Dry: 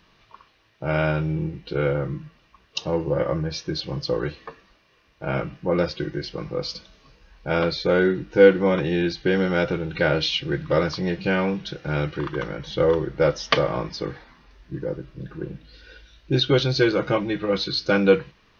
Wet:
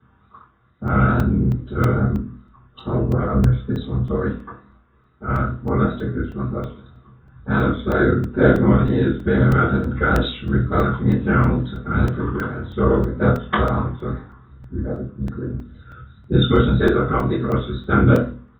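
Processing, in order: Chebyshev low-pass 3700 Hz, order 10; bell 560 Hz -6 dB 1.2 oct; whisperiser; low shelf 85 Hz +7.5 dB; wow and flutter 98 cents; doubler 24 ms -7 dB; reverb RT60 0.40 s, pre-delay 3 ms, DRR -12 dB; crackling interface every 0.32 s, samples 128, zero, from 0.88; mismatched tape noise reduction decoder only; gain -15 dB

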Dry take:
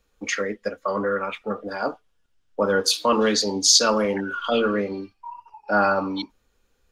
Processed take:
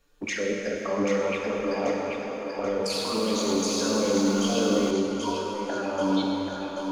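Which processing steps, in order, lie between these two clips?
negative-ratio compressor -23 dBFS, ratio -0.5; limiter -21 dBFS, peak gain reduction 10 dB; envelope flanger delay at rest 7.2 ms, full sweep at -26 dBFS; thinning echo 0.784 s, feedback 53%, high-pass 440 Hz, level -5 dB; plate-style reverb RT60 4 s, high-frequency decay 0.8×, DRR -1 dB; 2.84–4.91 lo-fi delay 0.106 s, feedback 80%, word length 9-bit, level -7 dB; gain +1.5 dB

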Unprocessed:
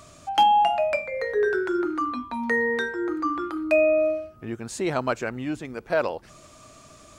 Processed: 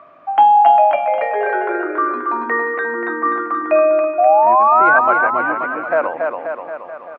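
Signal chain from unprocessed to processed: speaker cabinet 370–2100 Hz, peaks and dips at 410 Hz -4 dB, 720 Hz +5 dB, 1100 Hz +5 dB; painted sound rise, 4.18–4.99, 690–1600 Hz -18 dBFS; bouncing-ball echo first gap 0.28 s, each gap 0.9×, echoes 5; gain +5 dB

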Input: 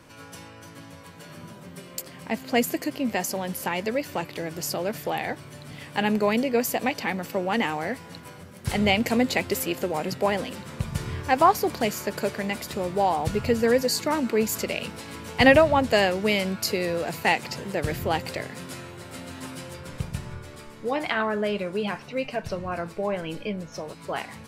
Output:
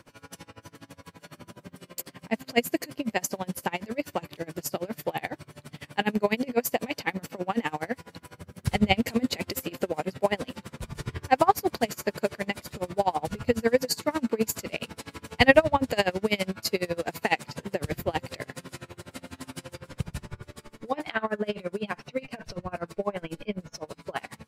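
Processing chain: 8.34–8.96 low shelf 180 Hz +7 dB; dB-linear tremolo 12 Hz, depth 27 dB; gain +2.5 dB

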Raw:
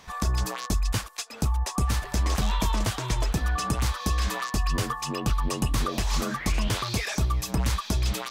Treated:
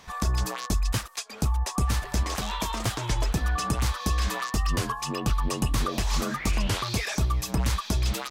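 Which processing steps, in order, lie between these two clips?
2.23–2.85 low shelf 190 Hz -10.5 dB; record warp 33 1/3 rpm, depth 100 cents

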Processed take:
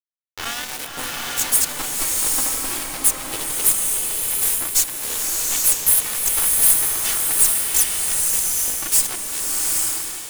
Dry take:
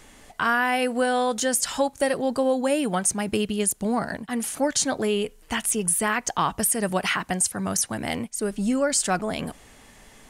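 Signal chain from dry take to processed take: minimum comb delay 2.7 ms; pre-emphasis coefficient 0.9; de-hum 90.94 Hz, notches 5; gate -53 dBFS, range -42 dB; low shelf 150 Hz +11 dB; in parallel at -2 dB: upward compressor, threshold -31 dBFS; on the sum: sample leveller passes 1; harmoniser +3 st -1 dB; sample gate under -19.5 dBFS; delay with a stepping band-pass 0.156 s, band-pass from 160 Hz, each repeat 1.4 oct, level -3 dB; bloom reverb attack 0.85 s, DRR -1.5 dB; gain -1.5 dB

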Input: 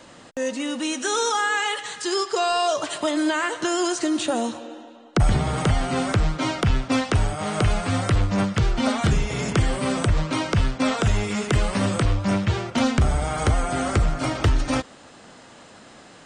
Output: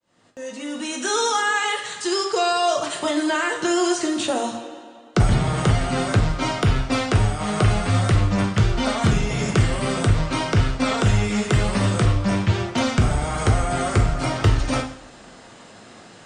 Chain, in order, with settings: opening faded in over 1.11 s; two-slope reverb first 0.52 s, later 2.1 s, from -25 dB, DRR 3 dB

